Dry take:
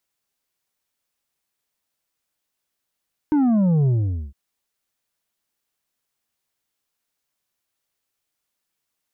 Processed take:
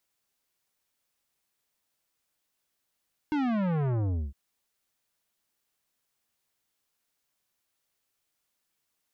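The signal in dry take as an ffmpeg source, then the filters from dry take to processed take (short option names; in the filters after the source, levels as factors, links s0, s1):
-f lavfi -i "aevalsrc='0.168*clip((1.01-t)/0.46,0,1)*tanh(2*sin(2*PI*310*1.01/log(65/310)*(exp(log(65/310)*t/1.01)-1)))/tanh(2)':d=1.01:s=44100"
-af "asoftclip=type=tanh:threshold=0.0473"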